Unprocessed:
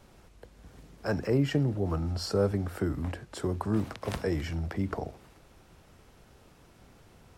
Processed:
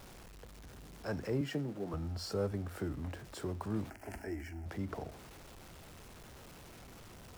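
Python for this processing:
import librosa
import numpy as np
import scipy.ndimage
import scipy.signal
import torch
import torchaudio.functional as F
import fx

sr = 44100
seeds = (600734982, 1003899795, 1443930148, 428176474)

y = x + 0.5 * 10.0 ** (-40.0 / 20.0) * np.sign(x)
y = fx.highpass(y, sr, hz=150.0, slope=24, at=(1.41, 1.94))
y = fx.fixed_phaser(y, sr, hz=750.0, stages=8, at=(3.9, 4.66))
y = y * librosa.db_to_amplitude(-9.0)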